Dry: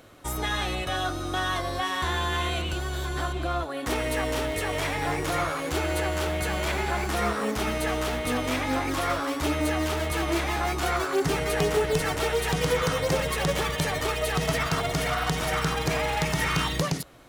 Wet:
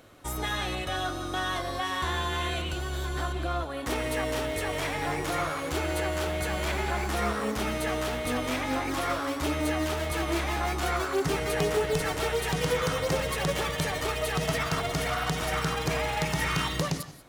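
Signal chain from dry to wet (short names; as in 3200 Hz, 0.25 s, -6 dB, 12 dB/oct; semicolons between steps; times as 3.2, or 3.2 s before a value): on a send: reverb, pre-delay 82 ms, DRR 14 dB; on the sum: gain -2.5 dB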